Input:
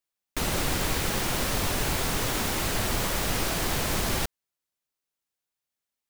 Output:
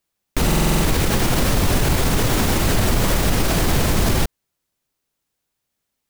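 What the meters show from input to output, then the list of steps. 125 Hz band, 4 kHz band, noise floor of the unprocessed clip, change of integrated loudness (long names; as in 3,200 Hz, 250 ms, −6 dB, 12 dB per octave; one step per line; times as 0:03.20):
+12.5 dB, +5.5 dB, below −85 dBFS, +8.0 dB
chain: low-shelf EQ 440 Hz +8.5 dB
boost into a limiter +16.5 dB
buffer that repeats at 0:00.46, samples 2,048, times 7
level −7.5 dB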